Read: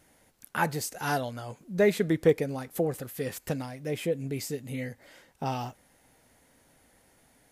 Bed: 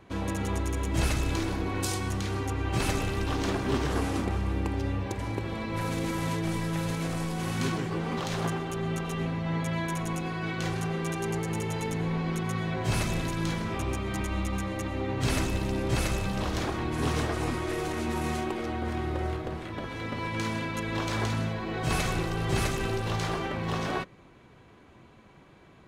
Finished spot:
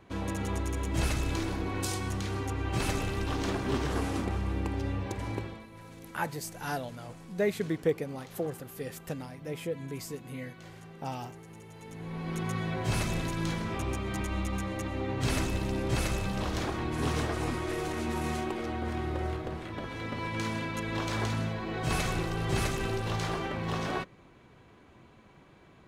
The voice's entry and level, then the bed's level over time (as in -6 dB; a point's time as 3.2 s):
5.60 s, -5.5 dB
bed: 5.4 s -2.5 dB
5.7 s -18 dB
11.73 s -18 dB
12.42 s -2 dB